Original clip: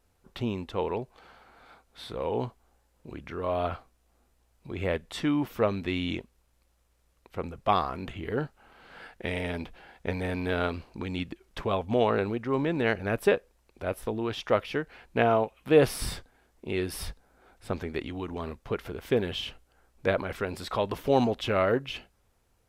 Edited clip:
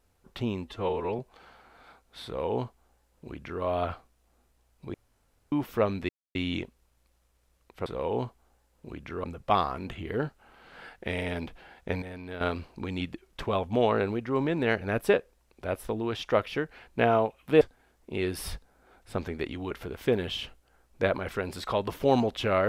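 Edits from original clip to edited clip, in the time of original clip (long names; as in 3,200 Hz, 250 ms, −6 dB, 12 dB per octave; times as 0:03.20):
0:00.65–0:01.01: time-stretch 1.5×
0:02.07–0:03.45: duplicate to 0:07.42
0:04.76–0:05.34: fill with room tone
0:05.91: splice in silence 0.26 s
0:10.20–0:10.59: clip gain −10 dB
0:15.79–0:16.16: remove
0:18.26–0:18.75: remove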